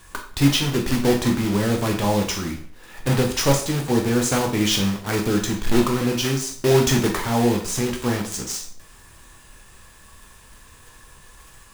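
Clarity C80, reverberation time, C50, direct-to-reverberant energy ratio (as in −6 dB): 11.5 dB, 0.50 s, 8.0 dB, 2.0 dB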